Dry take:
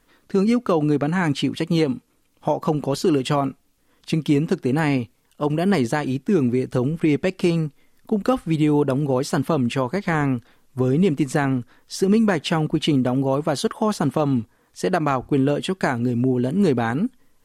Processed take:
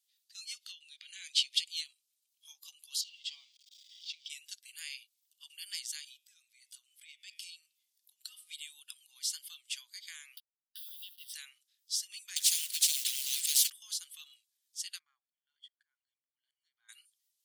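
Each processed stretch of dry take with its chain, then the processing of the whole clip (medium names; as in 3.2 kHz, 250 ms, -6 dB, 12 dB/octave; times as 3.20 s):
0.57–1.77 s: compression 4:1, threshold -27 dBFS + frequency weighting D
3.01–4.30 s: jump at every zero crossing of -28.5 dBFS + distance through air 160 m + static phaser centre 380 Hz, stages 6
6.06–8.49 s: de-hum 155.9 Hz, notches 24 + compression 10:1, threshold -22 dBFS
10.37–11.34 s: send-on-delta sampling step -39 dBFS + static phaser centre 1.5 kHz, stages 8 + three bands compressed up and down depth 100%
12.36–13.70 s: companding laws mixed up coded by mu + spectrum-flattening compressor 10:1
14.99–16.89 s: compression 20:1, threshold -27 dBFS + Savitzky-Golay filter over 41 samples + slow attack 239 ms
whole clip: inverse Chebyshev high-pass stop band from 590 Hz, stop band 80 dB; spectral noise reduction 9 dB; trim -1 dB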